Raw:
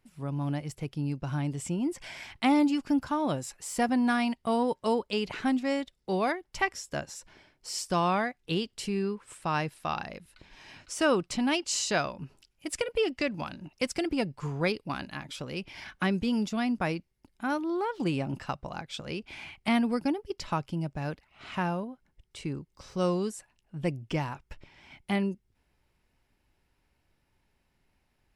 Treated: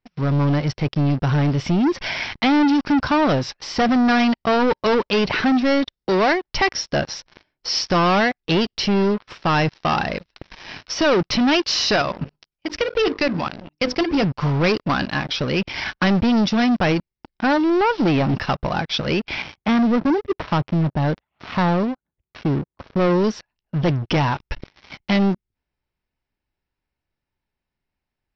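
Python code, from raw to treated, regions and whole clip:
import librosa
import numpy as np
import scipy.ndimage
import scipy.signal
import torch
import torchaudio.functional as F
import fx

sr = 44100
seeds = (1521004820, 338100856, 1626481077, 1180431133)

y = fx.chain(x, sr, fx.hum_notches(base_hz=50, count=10),
    fx.level_steps(step_db=10), at=(11.96, 14.24))
y = fx.chain(y, sr, fx.highpass(hz=61.0, slope=12),
    fx.high_shelf(hz=2100.0, db=-7.0),
    fx.resample_linear(factor=8), at=(19.42, 23.24))
y = fx.leveller(y, sr, passes=5)
y = scipy.signal.sosfilt(scipy.signal.cheby1(6, 1.0, 5600.0, 'lowpass', fs=sr, output='sos'), y)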